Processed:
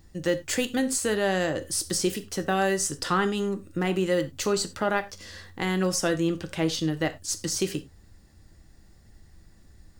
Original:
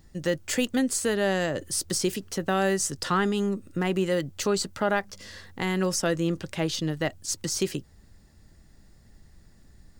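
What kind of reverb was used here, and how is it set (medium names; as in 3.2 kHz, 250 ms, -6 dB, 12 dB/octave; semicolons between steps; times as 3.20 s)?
gated-style reverb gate 120 ms falling, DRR 8.5 dB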